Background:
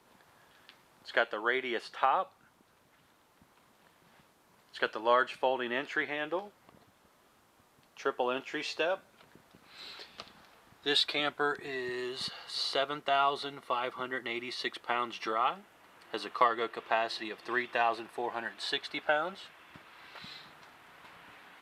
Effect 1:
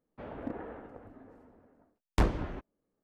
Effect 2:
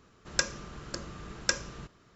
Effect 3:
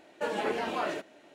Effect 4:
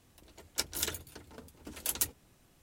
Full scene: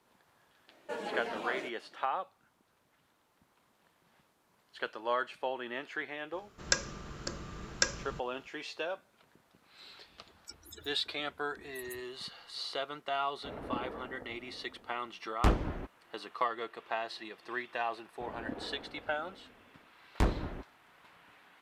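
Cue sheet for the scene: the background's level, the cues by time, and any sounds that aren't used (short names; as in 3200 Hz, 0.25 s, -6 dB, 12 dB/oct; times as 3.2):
background -6 dB
0.68 add 3 -7 dB
6.33 add 2 -1 dB
9.9 add 4 -10.5 dB + loudest bins only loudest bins 32
13.26 add 1 -0.5 dB
18.02 add 1 -2.5 dB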